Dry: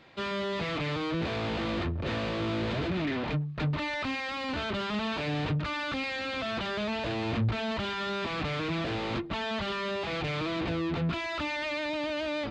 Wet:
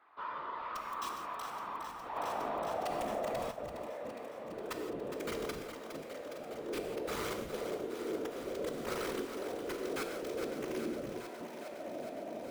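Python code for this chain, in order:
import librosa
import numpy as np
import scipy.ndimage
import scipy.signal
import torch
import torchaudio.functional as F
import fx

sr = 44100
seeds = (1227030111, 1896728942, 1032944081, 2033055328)

p1 = fx.dmg_buzz(x, sr, base_hz=400.0, harmonics=5, level_db=-60.0, tilt_db=-2, odd_only=False)
p2 = fx.filter_sweep_bandpass(p1, sr, from_hz=1100.0, to_hz=430.0, start_s=1.41, end_s=4.46, q=6.5)
p3 = (np.mod(10.0 ** (35.5 / 20.0) * p2 + 1.0, 2.0) - 1.0) / 10.0 ** (35.5 / 20.0)
p4 = fx.whisperise(p3, sr, seeds[0])
p5 = p4 + fx.echo_thinned(p4, sr, ms=412, feedback_pct=81, hz=500.0, wet_db=-8.0, dry=0)
p6 = fx.rev_gated(p5, sr, seeds[1], gate_ms=190, shape='flat', drr_db=4.5)
p7 = fx.env_flatten(p6, sr, amount_pct=70, at=(2.15, 3.5), fade=0.02)
y = p7 * librosa.db_to_amplitude(2.5)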